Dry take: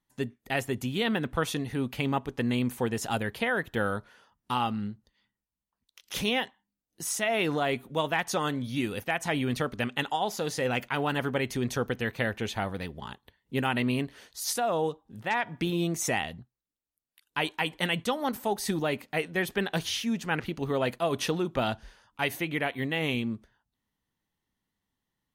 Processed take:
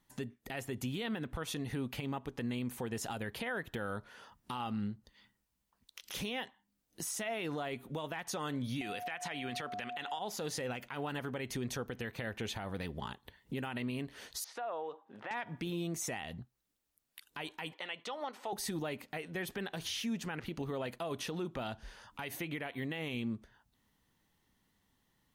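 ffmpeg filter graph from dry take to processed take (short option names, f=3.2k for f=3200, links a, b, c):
-filter_complex "[0:a]asettb=1/sr,asplit=3[a][b][c];[a]atrim=end=8.814[d];[b]atrim=start=8.81:end=10.19,asetpts=PTS-STARTPTS,afade=t=in:d=0.004:c=qsin,afade=t=out:st=1.376:d=0.004:c=qsin,highpass=120,equalizer=f=2.3k:w=0.35:g=10.5,aeval=exprs='val(0)+0.0282*sin(2*PI*720*n/s)':c=same[e];[c]atrim=start=10.186[f];[d][e]acrossfade=d=0.004:c1=hsin:c2=qsin[g];[g][f]acrossfade=d=0.004:c1=qsin:c2=hsin,asettb=1/sr,asplit=3[h][i][j];[h]atrim=end=14.444[k];[i]atrim=start=14.44:end=15.31,asetpts=PTS-STARTPTS,afade=t=in:d=0.004:c=qsin,afade=t=out:st=0.866:d=0.004:c=qsin,acompressor=threshold=-33dB:ratio=10:attack=3.2:release=140:knee=1:detection=peak,highpass=550,lowpass=2.2k[l];[j]atrim=start=15.306[m];[k][l]acrossfade=d=0.004:c1=hsin:c2=qsin[n];[n][m]acrossfade=d=0.004:c1=qsin:c2=hsin,asettb=1/sr,asplit=3[o][p][q];[o]atrim=end=17.734[r];[p]atrim=start=17.73:end=18.53,asetpts=PTS-STARTPTS,afade=t=in:d=0.004:c=qsin,afade=t=out:st=0.796:d=0.004:c=qsin,highpass=520,lowpass=4.5k,bandreject=f=1.6k:w=13[s];[q]atrim=start=18.526[t];[r][s]acrossfade=d=0.004:c1=hsin:c2=qsin[u];[u][t]acrossfade=d=0.004:c1=qsin:c2=hsin,acompressor=threshold=-48dB:ratio=2.5,alimiter=level_in=13.5dB:limit=-24dB:level=0:latency=1:release=80,volume=-13.5dB,volume=8.5dB"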